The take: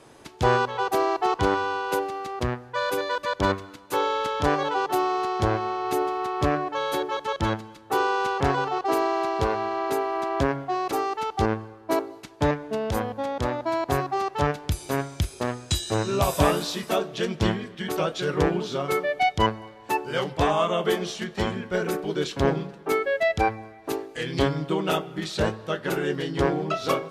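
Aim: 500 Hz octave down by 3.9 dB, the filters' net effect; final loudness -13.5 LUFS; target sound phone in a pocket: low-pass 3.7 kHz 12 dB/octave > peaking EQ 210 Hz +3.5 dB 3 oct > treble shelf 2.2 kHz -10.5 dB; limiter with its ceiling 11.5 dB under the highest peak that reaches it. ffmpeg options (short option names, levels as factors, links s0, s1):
-af "equalizer=f=500:t=o:g=-7.5,alimiter=limit=0.1:level=0:latency=1,lowpass=3700,equalizer=f=210:t=o:w=3:g=3.5,highshelf=f=2200:g=-10.5,volume=7.08"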